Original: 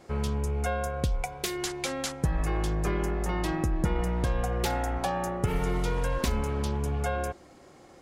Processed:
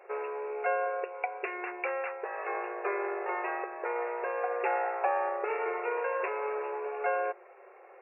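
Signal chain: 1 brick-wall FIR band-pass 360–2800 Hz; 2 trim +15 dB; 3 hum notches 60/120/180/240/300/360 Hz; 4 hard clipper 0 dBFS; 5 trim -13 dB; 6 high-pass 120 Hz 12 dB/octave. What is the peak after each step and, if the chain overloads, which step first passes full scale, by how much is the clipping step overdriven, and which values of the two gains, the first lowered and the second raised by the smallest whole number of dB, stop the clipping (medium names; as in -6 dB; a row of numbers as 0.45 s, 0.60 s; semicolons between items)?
-18.0 dBFS, -3.0 dBFS, -3.0 dBFS, -3.0 dBFS, -16.0 dBFS, -16.0 dBFS; nothing clips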